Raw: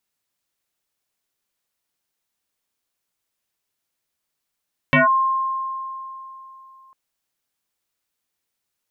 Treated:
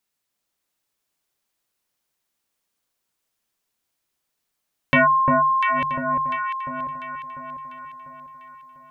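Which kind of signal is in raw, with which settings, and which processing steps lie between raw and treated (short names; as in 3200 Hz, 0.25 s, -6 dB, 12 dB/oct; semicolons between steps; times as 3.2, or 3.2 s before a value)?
FM tone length 2.00 s, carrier 1060 Hz, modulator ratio 0.38, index 4.3, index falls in 0.15 s linear, decay 3.22 s, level -10.5 dB
regenerating reverse delay 0.489 s, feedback 44%, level -10.5 dB; notches 50/100/150 Hz; echo with dull and thin repeats by turns 0.348 s, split 1300 Hz, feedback 65%, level -2 dB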